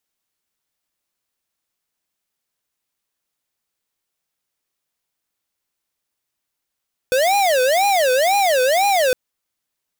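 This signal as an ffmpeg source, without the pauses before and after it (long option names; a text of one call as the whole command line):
ffmpeg -f lavfi -i "aevalsrc='0.158*(2*lt(mod((658*t-155/(2*PI*2)*sin(2*PI*2*t)),1),0.5)-1)':duration=2.01:sample_rate=44100" out.wav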